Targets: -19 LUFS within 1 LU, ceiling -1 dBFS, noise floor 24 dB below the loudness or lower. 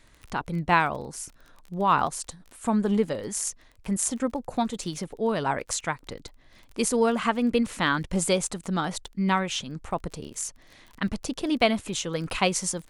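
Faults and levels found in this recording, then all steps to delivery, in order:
ticks 24/s; loudness -27.0 LUFS; peak -6.5 dBFS; loudness target -19.0 LUFS
-> de-click; gain +8 dB; limiter -1 dBFS

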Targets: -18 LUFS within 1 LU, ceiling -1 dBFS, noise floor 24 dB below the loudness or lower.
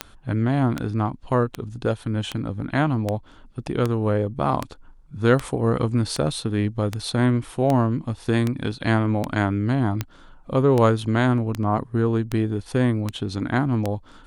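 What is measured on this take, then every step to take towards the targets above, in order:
clicks 19; loudness -23.0 LUFS; peak -5.0 dBFS; loudness target -18.0 LUFS
-> de-click; gain +5 dB; limiter -1 dBFS

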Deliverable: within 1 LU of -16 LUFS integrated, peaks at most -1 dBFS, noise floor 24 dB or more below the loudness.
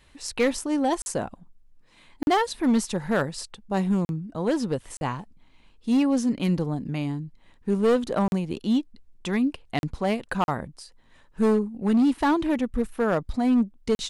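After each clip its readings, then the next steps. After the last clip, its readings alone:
clipped 1.4%; flat tops at -16.0 dBFS; dropouts 8; longest dropout 41 ms; loudness -25.5 LUFS; peak -16.0 dBFS; loudness target -16.0 LUFS
-> clip repair -16 dBFS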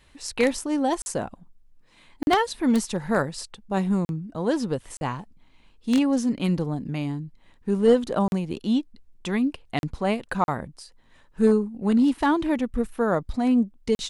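clipped 0.0%; dropouts 8; longest dropout 41 ms
-> interpolate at 1.02/2.23/4.05/4.97/8.28/9.79/10.44/13.95, 41 ms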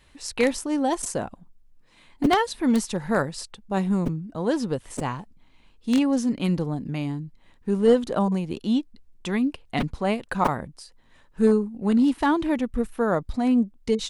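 dropouts 0; loudness -24.5 LUFS; peak -7.0 dBFS; loudness target -16.0 LUFS
-> gain +8.5 dB; limiter -1 dBFS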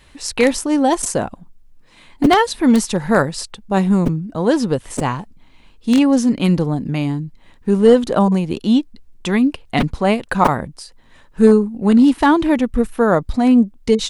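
loudness -16.5 LUFS; peak -1.0 dBFS; noise floor -48 dBFS

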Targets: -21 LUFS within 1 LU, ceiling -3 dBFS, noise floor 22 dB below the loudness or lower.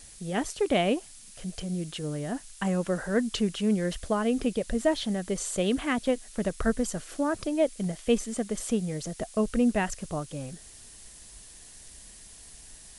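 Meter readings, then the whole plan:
noise floor -49 dBFS; noise floor target -51 dBFS; loudness -29.0 LUFS; peak -12.5 dBFS; loudness target -21.0 LUFS
-> noise print and reduce 6 dB; gain +8 dB

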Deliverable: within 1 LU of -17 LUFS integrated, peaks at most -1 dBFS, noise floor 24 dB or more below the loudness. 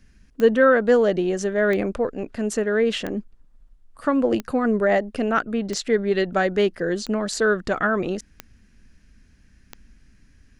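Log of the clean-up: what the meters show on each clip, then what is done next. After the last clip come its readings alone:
clicks 8; loudness -22.0 LUFS; peak -5.0 dBFS; loudness target -17.0 LUFS
-> de-click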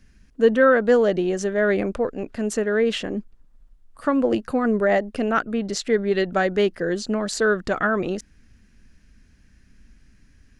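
clicks 0; loudness -22.0 LUFS; peak -5.0 dBFS; loudness target -17.0 LUFS
-> gain +5 dB; limiter -1 dBFS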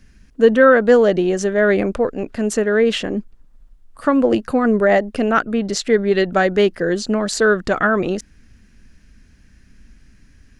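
loudness -17.0 LUFS; peak -1.0 dBFS; noise floor -51 dBFS

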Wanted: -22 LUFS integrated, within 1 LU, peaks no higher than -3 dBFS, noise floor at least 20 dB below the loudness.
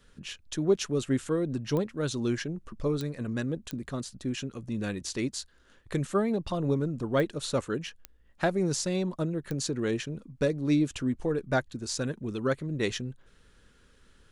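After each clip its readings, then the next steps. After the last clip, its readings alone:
clicks 6; loudness -31.0 LUFS; peak -13.5 dBFS; loudness target -22.0 LUFS
-> de-click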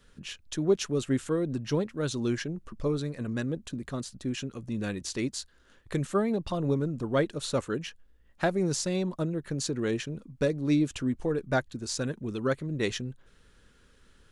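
clicks 0; loudness -31.0 LUFS; peak -13.5 dBFS; loudness target -22.0 LUFS
-> gain +9 dB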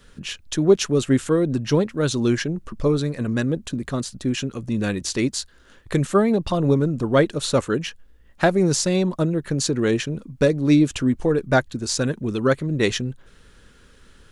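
loudness -22.0 LUFS; peak -4.5 dBFS; noise floor -52 dBFS

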